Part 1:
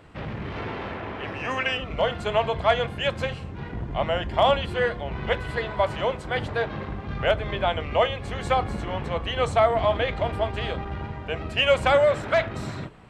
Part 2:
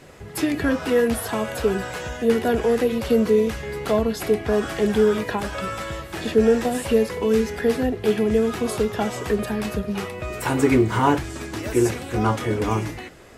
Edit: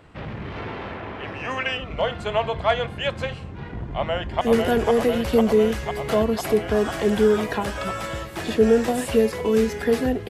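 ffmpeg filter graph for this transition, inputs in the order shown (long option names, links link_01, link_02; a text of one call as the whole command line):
ffmpeg -i cue0.wav -i cue1.wav -filter_complex "[0:a]apad=whole_dur=10.29,atrim=end=10.29,atrim=end=4.412[link_01];[1:a]atrim=start=2.178:end=8.06[link_02];[link_01][link_02]acrossfade=duration=0.004:curve1=hsin:curve2=hsin,asplit=2[link_03][link_04];[link_04]afade=type=in:start_time=3.96:duration=0.01,afade=type=out:start_time=4.41:duration=0.01,aecho=0:1:500|1000|1500|2000|2500|3000|3500|4000|4500|5000|5500|6000:0.749894|0.599915|0.479932|0.383946|0.307157|0.245725|0.19658|0.157264|0.125811|0.100649|0.0805193|0.0644154[link_05];[link_03][link_05]amix=inputs=2:normalize=0" out.wav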